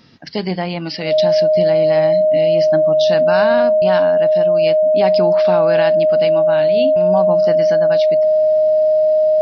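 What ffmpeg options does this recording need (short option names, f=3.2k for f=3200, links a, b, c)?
-af "bandreject=f=620:w=30"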